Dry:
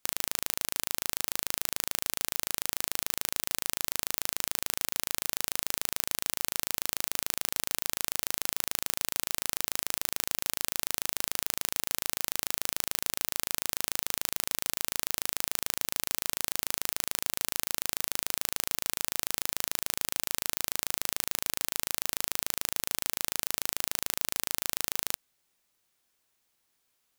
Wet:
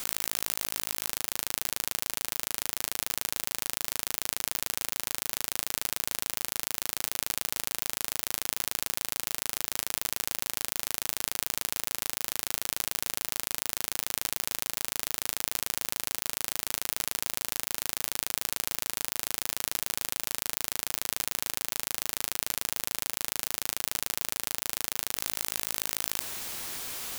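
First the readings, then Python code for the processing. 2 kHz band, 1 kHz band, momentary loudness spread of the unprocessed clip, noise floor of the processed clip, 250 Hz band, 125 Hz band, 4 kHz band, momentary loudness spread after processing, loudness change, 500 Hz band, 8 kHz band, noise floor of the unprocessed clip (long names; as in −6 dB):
+0.5 dB, +0.5 dB, 0 LU, −68 dBFS, +0.5 dB, +0.5 dB, +0.5 dB, 1 LU, 0.0 dB, +0.5 dB, +0.5 dB, −76 dBFS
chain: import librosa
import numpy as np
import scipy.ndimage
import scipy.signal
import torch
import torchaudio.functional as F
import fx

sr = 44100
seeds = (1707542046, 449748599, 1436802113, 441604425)

p1 = fx.leveller(x, sr, passes=1)
p2 = p1 + fx.echo_single(p1, sr, ms=1049, db=-13.5, dry=0)
y = fx.env_flatten(p2, sr, amount_pct=100)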